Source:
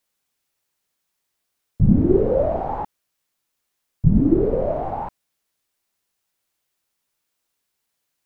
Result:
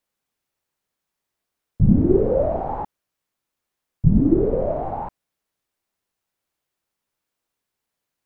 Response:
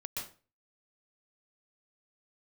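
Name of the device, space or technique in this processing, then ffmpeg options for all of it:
behind a face mask: -af "highshelf=f=2100:g=-7.5"

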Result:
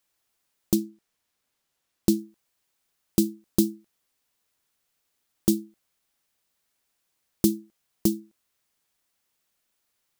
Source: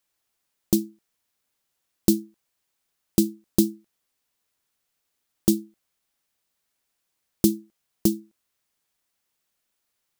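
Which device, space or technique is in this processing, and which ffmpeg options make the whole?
clipper into limiter: -filter_complex "[0:a]asettb=1/sr,asplit=3[s0][s1][s2];[s0]atrim=end=0.744[s3];[s1]atrim=start=0.74:end=2.19,asetpts=PTS-STARTPTS,afade=t=in:d=0.004:c=qsin,afade=t=out:st=1.446:d=0.004:c=qsin,highshelf=f=8200:g=-5.5[s4];[s2]atrim=start=2.186[s5];[s3][s4]acrossfade=d=0.004:c1=hsin:c2=qsin[s6];[s6][s5]acrossfade=d=0.004:c1=qsin:c2=hsin,asoftclip=type=hard:threshold=0.531,alimiter=limit=0.355:level=0:latency=1:release=260,volume=1.19"

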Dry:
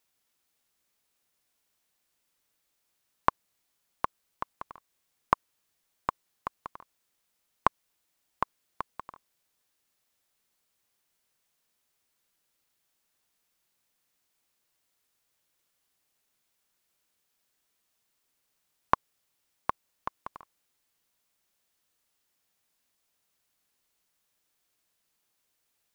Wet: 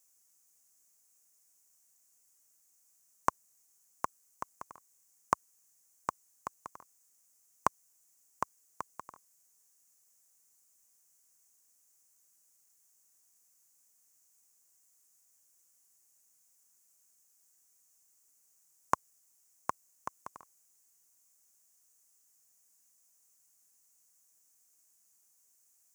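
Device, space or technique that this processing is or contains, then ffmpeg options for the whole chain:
budget condenser microphone: -af "highpass=73,highshelf=f=5000:t=q:w=3:g=11,volume=0.631"

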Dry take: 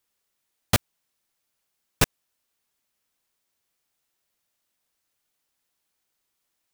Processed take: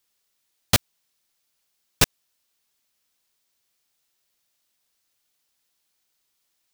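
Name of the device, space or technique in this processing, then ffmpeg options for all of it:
presence and air boost: -af "equalizer=f=4500:t=o:w=1.7:g=5.5,highshelf=f=11000:g=5"

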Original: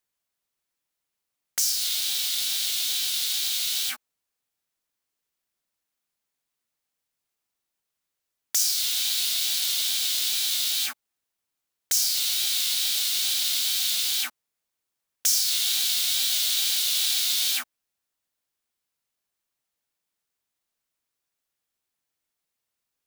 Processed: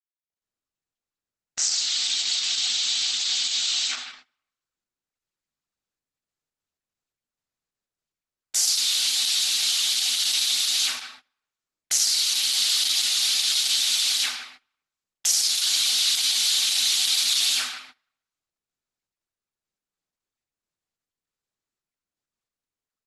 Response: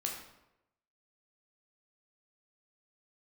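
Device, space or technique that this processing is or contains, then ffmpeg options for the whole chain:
speakerphone in a meeting room: -filter_complex "[0:a]highpass=f=49:p=1,asplit=3[s0][s1][s2];[s0]afade=t=out:st=13.2:d=0.02[s3];[s1]equalizer=f=110:t=o:w=0.59:g=-6,afade=t=in:st=13.2:d=0.02,afade=t=out:st=14.07:d=0.02[s4];[s2]afade=t=in:st=14.07:d=0.02[s5];[s3][s4][s5]amix=inputs=3:normalize=0[s6];[1:a]atrim=start_sample=2205[s7];[s6][s7]afir=irnorm=-1:irlink=0,asplit=2[s8][s9];[s9]adelay=160,highpass=300,lowpass=3400,asoftclip=type=hard:threshold=0.133,volume=0.282[s10];[s8][s10]amix=inputs=2:normalize=0,dynaudnorm=f=130:g=5:m=1.88,agate=range=0.112:threshold=0.00708:ratio=16:detection=peak,volume=0.75" -ar 48000 -c:a libopus -b:a 12k

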